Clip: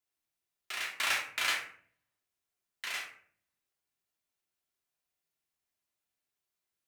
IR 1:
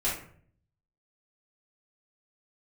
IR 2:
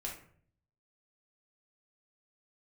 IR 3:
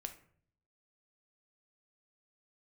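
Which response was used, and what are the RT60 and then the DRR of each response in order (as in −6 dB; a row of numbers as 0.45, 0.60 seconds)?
2; 0.55, 0.55, 0.55 seconds; −10.0, −3.0, 6.0 decibels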